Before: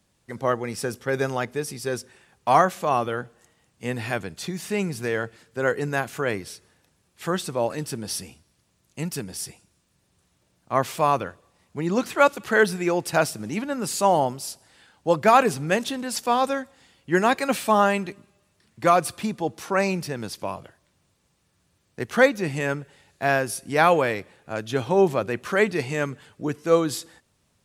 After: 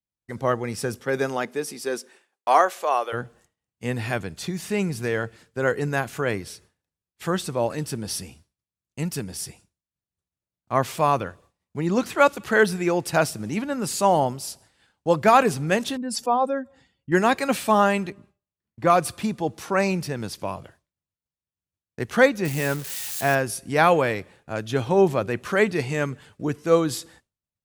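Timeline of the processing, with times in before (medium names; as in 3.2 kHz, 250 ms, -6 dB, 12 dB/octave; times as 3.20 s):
1.00–3.12 s: high-pass 140 Hz -> 470 Hz 24 dB/octave
15.97–17.12 s: spectral contrast enhancement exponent 1.7
18.10–18.90 s: treble shelf 2.8 kHz -11 dB
22.45–23.35 s: zero-crossing glitches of -23 dBFS
whole clip: bass shelf 110 Hz +7.5 dB; expander -47 dBFS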